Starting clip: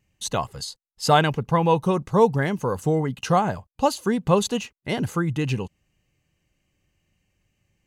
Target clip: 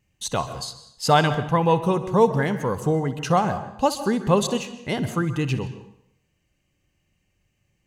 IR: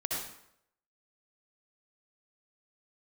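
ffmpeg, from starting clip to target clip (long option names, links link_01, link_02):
-filter_complex "[0:a]asplit=2[link_01][link_02];[1:a]atrim=start_sample=2205,lowpass=8900,adelay=62[link_03];[link_02][link_03]afir=irnorm=-1:irlink=0,volume=-15.5dB[link_04];[link_01][link_04]amix=inputs=2:normalize=0"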